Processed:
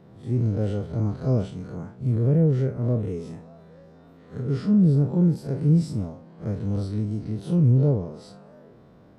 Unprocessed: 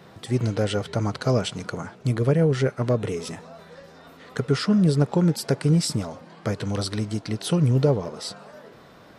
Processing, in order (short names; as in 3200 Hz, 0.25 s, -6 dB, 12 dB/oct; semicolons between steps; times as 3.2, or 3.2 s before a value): time blur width 86 ms; tilt shelf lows +9 dB, about 710 Hz; gain -5.5 dB